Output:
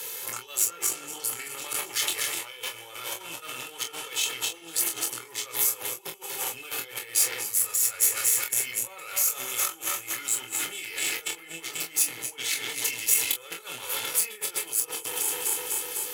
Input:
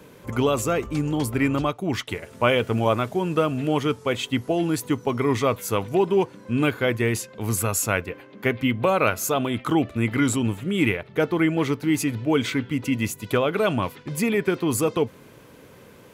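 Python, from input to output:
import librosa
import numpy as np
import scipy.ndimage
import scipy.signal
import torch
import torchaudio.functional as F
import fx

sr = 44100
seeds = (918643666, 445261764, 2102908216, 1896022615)

p1 = fx.reverse_delay_fb(x, sr, ms=124, feedback_pct=84, wet_db=-13)
p2 = fx.peak_eq(p1, sr, hz=280.0, db=-4.5, octaves=0.21)
p3 = p2 + 0.74 * np.pad(p2, (int(2.3 * sr / 1000.0), 0))[:len(p2)]
p4 = fx.hpss(p3, sr, part='percussive', gain_db=-4)
p5 = fx.over_compress(p4, sr, threshold_db=-32.0, ratio=-1.0)
p6 = fx.cheby_harmonics(p5, sr, harmonics=(6,), levels_db=(-17,), full_scale_db=-12.0)
p7 = np.diff(p6, prepend=0.0)
p8 = p7 + fx.room_early_taps(p7, sr, ms=(24, 42), db=(-4.5, -10.5), dry=0)
p9 = fx.band_squash(p8, sr, depth_pct=40)
y = p9 * librosa.db_to_amplitude(8.0)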